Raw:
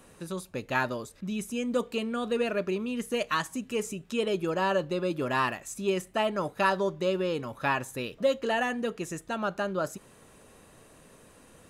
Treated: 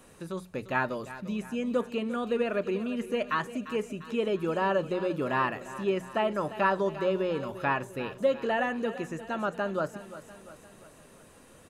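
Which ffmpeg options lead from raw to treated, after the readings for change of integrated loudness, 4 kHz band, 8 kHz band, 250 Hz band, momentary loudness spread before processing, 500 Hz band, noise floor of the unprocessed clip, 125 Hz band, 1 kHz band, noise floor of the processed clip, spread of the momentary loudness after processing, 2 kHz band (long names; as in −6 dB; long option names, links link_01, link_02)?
0.0 dB, −5.0 dB, can't be measured, 0.0 dB, 8 LU, 0.0 dB, −56 dBFS, −0.5 dB, 0.0 dB, −55 dBFS, 9 LU, −1.0 dB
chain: -filter_complex "[0:a]bandreject=frequency=60:width_type=h:width=6,bandreject=frequency=120:width_type=h:width=6,bandreject=frequency=180:width_type=h:width=6,aecho=1:1:348|696|1044|1392|1740:0.178|0.0925|0.0481|0.025|0.013,acrossover=split=2800[link_01][link_02];[link_02]acompressor=threshold=-53dB:ratio=4:attack=1:release=60[link_03];[link_01][link_03]amix=inputs=2:normalize=0"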